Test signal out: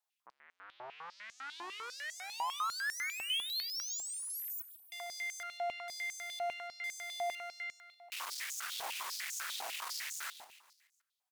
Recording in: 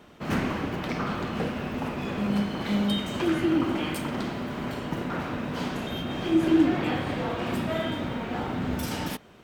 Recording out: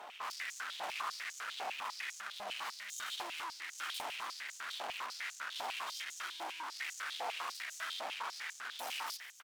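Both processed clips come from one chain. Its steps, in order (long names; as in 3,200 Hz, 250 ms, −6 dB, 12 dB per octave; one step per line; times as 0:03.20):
brickwall limiter −19 dBFS
tube saturation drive 47 dB, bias 0.75
on a send: repeating echo 143 ms, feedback 51%, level −13 dB
on the sum: high-pass on a step sequencer 10 Hz 770–6,600 Hz
level +5.5 dB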